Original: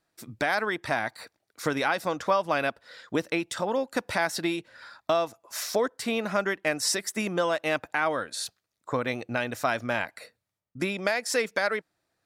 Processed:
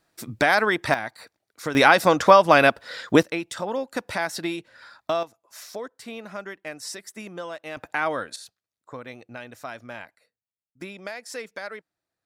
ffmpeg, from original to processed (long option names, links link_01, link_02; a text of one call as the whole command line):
ffmpeg -i in.wav -af "asetnsamples=nb_out_samples=441:pad=0,asendcmd='0.94 volume volume -1.5dB;1.75 volume volume 11dB;3.23 volume volume -0.5dB;5.23 volume volume -9dB;7.77 volume volume 1dB;8.36 volume volume -10dB;10.15 volume volume -20dB;10.81 volume volume -9dB',volume=7dB" out.wav